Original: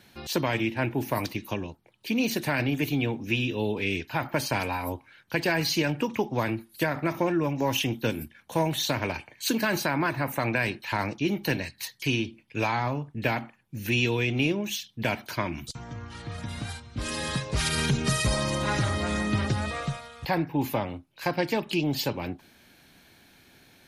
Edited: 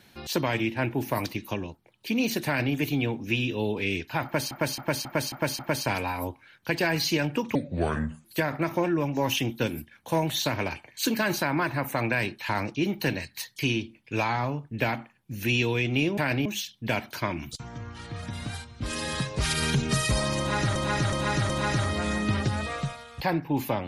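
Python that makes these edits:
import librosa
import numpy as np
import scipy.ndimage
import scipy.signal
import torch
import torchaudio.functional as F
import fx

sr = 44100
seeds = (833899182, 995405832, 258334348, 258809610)

y = fx.edit(x, sr, fx.duplicate(start_s=2.46, length_s=0.28, to_s=14.61),
    fx.repeat(start_s=4.24, length_s=0.27, count=6),
    fx.speed_span(start_s=6.2, length_s=0.48, speed=0.69),
    fx.repeat(start_s=18.54, length_s=0.37, count=4), tone=tone)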